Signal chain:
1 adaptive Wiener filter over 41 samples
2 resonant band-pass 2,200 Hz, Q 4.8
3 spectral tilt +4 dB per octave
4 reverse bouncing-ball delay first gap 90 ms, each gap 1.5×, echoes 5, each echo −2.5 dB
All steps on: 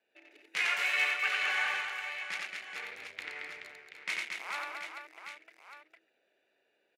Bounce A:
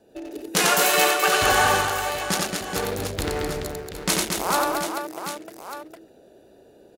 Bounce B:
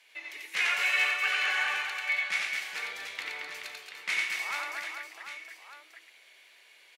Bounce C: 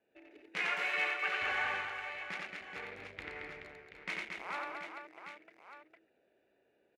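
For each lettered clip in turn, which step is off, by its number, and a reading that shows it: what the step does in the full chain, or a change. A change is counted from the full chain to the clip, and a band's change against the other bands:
2, 2 kHz band −17.5 dB
1, 500 Hz band −2.5 dB
3, 250 Hz band +11.0 dB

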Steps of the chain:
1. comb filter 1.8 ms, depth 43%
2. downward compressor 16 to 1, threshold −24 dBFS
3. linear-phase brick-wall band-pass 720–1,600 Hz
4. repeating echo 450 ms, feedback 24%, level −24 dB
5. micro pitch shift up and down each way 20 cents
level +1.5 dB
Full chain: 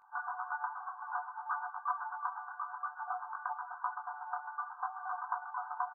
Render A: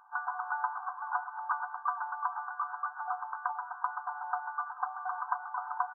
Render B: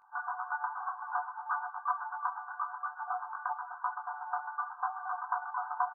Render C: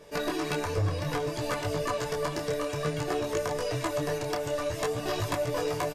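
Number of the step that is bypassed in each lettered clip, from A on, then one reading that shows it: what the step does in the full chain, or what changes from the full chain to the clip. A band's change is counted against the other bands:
5, change in crest factor +2.0 dB
2, average gain reduction 2.5 dB
3, change in crest factor −6.0 dB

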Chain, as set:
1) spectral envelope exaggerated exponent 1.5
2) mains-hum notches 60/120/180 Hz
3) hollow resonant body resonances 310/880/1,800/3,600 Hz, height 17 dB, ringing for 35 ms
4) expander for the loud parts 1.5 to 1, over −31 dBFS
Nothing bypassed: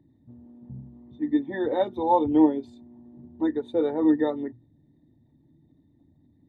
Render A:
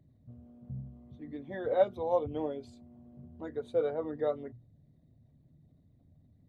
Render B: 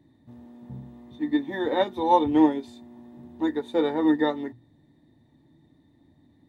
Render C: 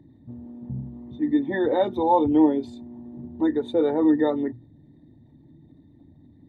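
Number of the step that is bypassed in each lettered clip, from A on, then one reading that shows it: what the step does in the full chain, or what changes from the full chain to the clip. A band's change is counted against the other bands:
3, 250 Hz band −12.5 dB
1, 2 kHz band +6.0 dB
4, 125 Hz band +3.5 dB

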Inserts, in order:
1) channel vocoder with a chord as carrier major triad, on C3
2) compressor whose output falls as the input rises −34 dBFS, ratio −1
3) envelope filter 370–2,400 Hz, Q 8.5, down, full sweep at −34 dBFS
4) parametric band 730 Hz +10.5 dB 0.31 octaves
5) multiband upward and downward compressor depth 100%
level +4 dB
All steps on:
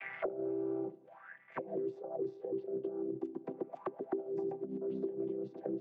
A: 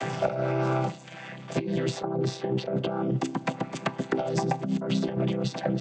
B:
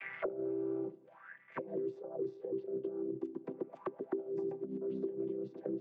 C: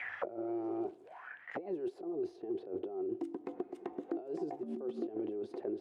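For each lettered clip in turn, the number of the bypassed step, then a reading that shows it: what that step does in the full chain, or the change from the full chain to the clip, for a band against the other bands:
3, 125 Hz band +12.5 dB
4, 1 kHz band −3.0 dB
1, 125 Hz band −7.0 dB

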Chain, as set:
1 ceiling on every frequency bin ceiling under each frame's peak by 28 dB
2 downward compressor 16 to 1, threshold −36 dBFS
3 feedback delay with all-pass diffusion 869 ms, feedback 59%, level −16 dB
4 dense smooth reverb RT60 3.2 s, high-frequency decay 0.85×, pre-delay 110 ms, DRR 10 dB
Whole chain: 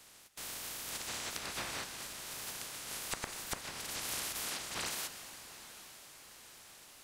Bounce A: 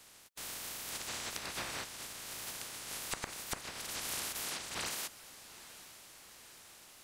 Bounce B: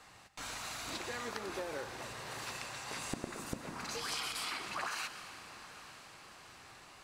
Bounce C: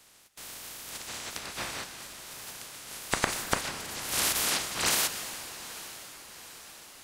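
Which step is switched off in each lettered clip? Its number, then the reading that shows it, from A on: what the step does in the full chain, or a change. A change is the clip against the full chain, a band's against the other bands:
4, echo-to-direct ratio −8.5 dB to −14.0 dB
1, 8 kHz band −9.0 dB
2, average gain reduction 4.0 dB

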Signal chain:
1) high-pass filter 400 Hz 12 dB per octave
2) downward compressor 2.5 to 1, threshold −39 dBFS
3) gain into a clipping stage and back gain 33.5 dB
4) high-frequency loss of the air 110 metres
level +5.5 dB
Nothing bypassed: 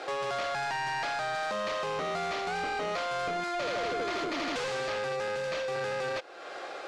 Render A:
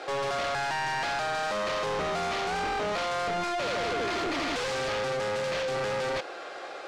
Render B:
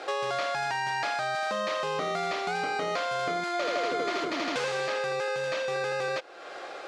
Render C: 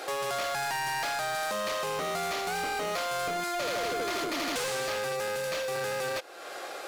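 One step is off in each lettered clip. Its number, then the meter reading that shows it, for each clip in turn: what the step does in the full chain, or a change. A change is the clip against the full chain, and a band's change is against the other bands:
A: 2, average gain reduction 12.0 dB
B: 3, distortion level −11 dB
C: 4, 8 kHz band +9.0 dB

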